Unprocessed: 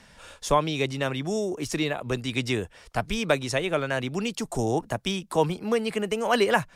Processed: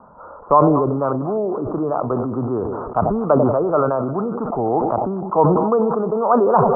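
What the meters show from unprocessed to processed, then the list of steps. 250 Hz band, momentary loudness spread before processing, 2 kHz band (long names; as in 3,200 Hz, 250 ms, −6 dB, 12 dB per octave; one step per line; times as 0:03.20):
+9.0 dB, 6 LU, −10.5 dB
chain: Butterworth low-pass 1,300 Hz 96 dB per octave
spectral tilt +4 dB per octave
in parallel at +0.5 dB: downward compressor, threshold −39 dBFS, peak gain reduction 20 dB
on the sum: echo with a time of its own for lows and highs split 710 Hz, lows 93 ms, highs 243 ms, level −16 dB
level that may fall only so fast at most 28 dB per second
level +8.5 dB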